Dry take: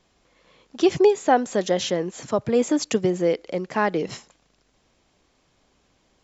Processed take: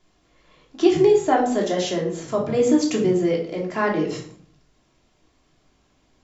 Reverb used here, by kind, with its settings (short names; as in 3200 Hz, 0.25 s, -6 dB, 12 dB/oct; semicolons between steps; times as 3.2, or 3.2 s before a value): shoebox room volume 580 m³, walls furnished, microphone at 3.1 m; gain -4 dB